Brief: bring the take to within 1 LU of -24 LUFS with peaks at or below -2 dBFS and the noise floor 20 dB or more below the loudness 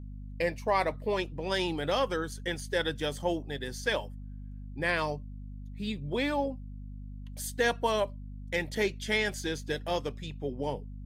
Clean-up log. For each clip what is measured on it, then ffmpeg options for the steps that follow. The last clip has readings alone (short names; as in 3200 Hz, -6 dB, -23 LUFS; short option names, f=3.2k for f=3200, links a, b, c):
hum 50 Hz; harmonics up to 250 Hz; hum level -39 dBFS; loudness -31.5 LUFS; peak -14.5 dBFS; loudness target -24.0 LUFS
-> -af "bandreject=f=50:t=h:w=6,bandreject=f=100:t=h:w=6,bandreject=f=150:t=h:w=6,bandreject=f=200:t=h:w=6,bandreject=f=250:t=h:w=6"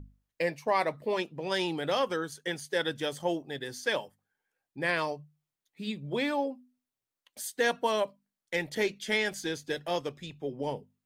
hum none; loudness -32.0 LUFS; peak -14.5 dBFS; loudness target -24.0 LUFS
-> -af "volume=8dB"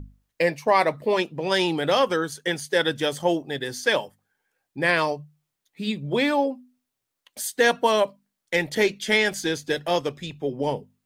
loudness -24.0 LUFS; peak -6.5 dBFS; noise floor -82 dBFS